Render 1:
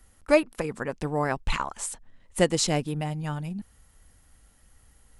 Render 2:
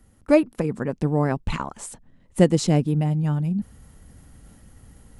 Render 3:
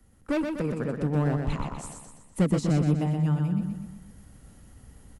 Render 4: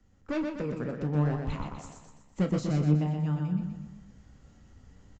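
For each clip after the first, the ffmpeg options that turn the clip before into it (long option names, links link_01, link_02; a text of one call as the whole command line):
ffmpeg -i in.wav -af "equalizer=frequency=180:width=0.38:gain=14,areverse,acompressor=mode=upward:threshold=-34dB:ratio=2.5,areverse,volume=-4dB" out.wav
ffmpeg -i in.wav -filter_complex "[0:a]acrossover=split=240|940[link_01][link_02][link_03];[link_02]asoftclip=type=hard:threshold=-24.5dB[link_04];[link_03]alimiter=level_in=3.5dB:limit=-24dB:level=0:latency=1:release=401,volume=-3.5dB[link_05];[link_01][link_04][link_05]amix=inputs=3:normalize=0,aecho=1:1:123|246|369|492|615|738:0.562|0.281|0.141|0.0703|0.0351|0.0176,volume=-3.5dB" out.wav
ffmpeg -i in.wav -filter_complex "[0:a]flanger=delay=9.7:depth=6.6:regen=63:speed=0.59:shape=triangular,asplit=2[link_01][link_02];[link_02]adelay=33,volume=-12dB[link_03];[link_01][link_03]amix=inputs=2:normalize=0,aresample=16000,aresample=44100" out.wav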